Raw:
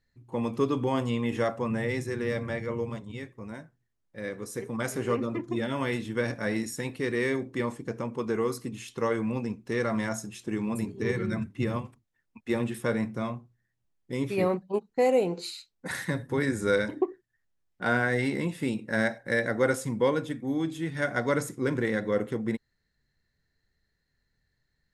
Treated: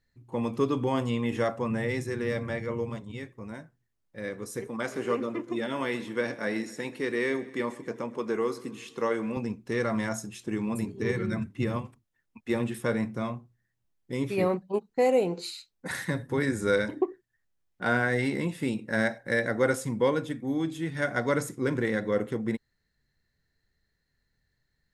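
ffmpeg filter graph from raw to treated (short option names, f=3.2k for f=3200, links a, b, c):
-filter_complex "[0:a]asettb=1/sr,asplit=3[a][b][c];[a]atrim=end=4.674[d];[b]atrim=start=4.67:end=9.37,asetpts=PTS-STARTPTS,afade=t=in:d=0.004:c=qsin,afade=t=out:st=4.696:d=0.004:c=qsin,acrossover=split=5200[e][f];[f]acompressor=threshold=-52dB:ratio=4:attack=1:release=60[g];[e][g]amix=inputs=2:normalize=0,highpass=210,aecho=1:1:129|258|387|516|645:0.112|0.0651|0.0377|0.0219|0.0127,atrim=end_sample=207270[h];[c]atrim=start=9.366[i];[d][h]acrossfade=d=0.004:c1=hsin:c2=qsin[j];[j][i]acrossfade=d=0.004:c1=qsin:c2=hsin"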